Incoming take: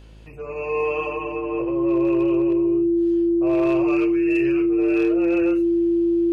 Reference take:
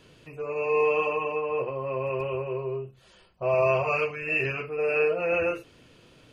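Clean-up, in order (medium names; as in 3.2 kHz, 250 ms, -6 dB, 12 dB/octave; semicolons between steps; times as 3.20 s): clip repair -13.5 dBFS; de-hum 53.5 Hz, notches 19; band-stop 340 Hz, Q 30; trim 0 dB, from 2.53 s +3.5 dB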